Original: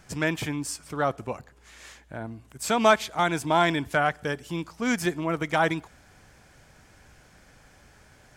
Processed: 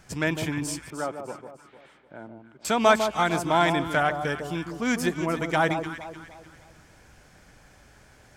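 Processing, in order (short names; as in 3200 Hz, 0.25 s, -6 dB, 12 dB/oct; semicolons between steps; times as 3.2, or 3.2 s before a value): 0.9–2.65 speaker cabinet 250–2800 Hz, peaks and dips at 260 Hz -5 dB, 470 Hz -5 dB, 710 Hz -6 dB, 1100 Hz -8 dB, 1800 Hz -10 dB, 2600 Hz -8 dB; echo with dull and thin repeats by turns 0.151 s, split 1100 Hz, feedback 59%, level -6.5 dB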